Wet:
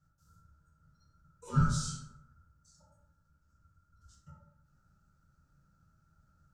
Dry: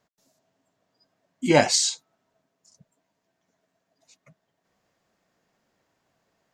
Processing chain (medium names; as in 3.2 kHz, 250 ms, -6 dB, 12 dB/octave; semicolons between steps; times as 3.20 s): compression 8:1, threshold -29 dBFS, peak gain reduction 17 dB; FFT filter 100 Hz 0 dB, 160 Hz -7 dB, 360 Hz -12 dB, 590 Hz +14 dB, 1.4 kHz -15 dB, 2.9 kHz -16 dB, 5.3 kHz -4 dB; ring modulator 730 Hz; peaking EQ 1.1 kHz -10 dB 2.3 oct; plate-style reverb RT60 0.98 s, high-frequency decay 0.4×, DRR -6 dB; trim -2.5 dB